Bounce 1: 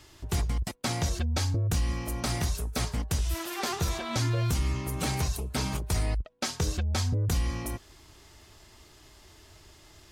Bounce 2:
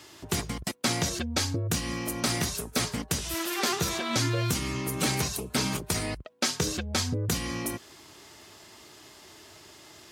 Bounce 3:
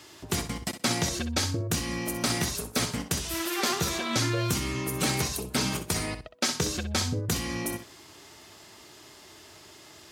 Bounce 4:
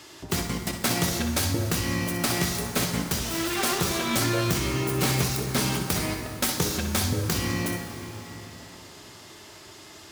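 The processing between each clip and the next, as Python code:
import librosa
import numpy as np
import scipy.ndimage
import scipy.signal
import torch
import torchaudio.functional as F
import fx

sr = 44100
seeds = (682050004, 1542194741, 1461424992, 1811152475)

y1 = scipy.signal.sosfilt(scipy.signal.butter(2, 170.0, 'highpass', fs=sr, output='sos'), x)
y1 = fx.dynamic_eq(y1, sr, hz=790.0, q=1.3, threshold_db=-47.0, ratio=4.0, max_db=-5)
y1 = y1 * librosa.db_to_amplitude(5.5)
y2 = fx.echo_feedback(y1, sr, ms=63, feedback_pct=18, wet_db=-10.5)
y3 = fx.self_delay(y2, sr, depth_ms=0.17)
y3 = fx.rev_plate(y3, sr, seeds[0], rt60_s=4.0, hf_ratio=0.6, predelay_ms=0, drr_db=5.0)
y3 = y3 * librosa.db_to_amplitude(3.0)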